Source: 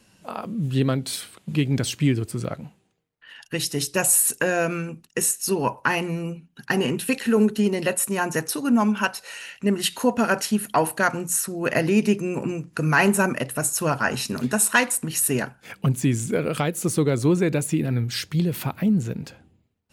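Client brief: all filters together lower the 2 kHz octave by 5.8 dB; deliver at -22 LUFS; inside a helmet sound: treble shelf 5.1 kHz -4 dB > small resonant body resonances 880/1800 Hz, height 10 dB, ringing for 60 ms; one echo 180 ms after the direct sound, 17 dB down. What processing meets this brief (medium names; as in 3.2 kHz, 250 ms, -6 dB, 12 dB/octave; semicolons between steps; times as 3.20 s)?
peaking EQ 2 kHz -7.5 dB; treble shelf 5.1 kHz -4 dB; delay 180 ms -17 dB; small resonant body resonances 880/1800 Hz, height 10 dB, ringing for 60 ms; trim +2 dB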